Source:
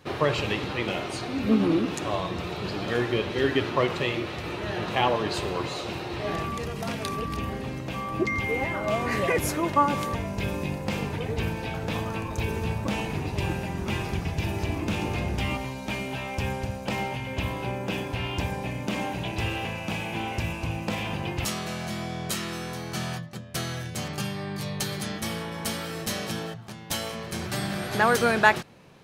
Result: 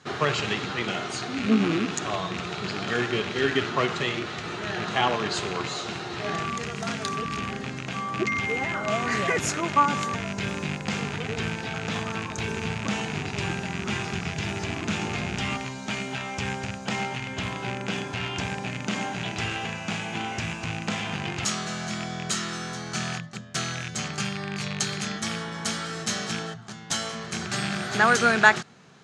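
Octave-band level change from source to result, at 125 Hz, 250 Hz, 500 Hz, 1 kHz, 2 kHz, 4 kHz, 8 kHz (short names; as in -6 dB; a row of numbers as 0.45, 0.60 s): -2.0, -0.5, -2.0, +1.0, +3.5, +3.0, +4.5 dB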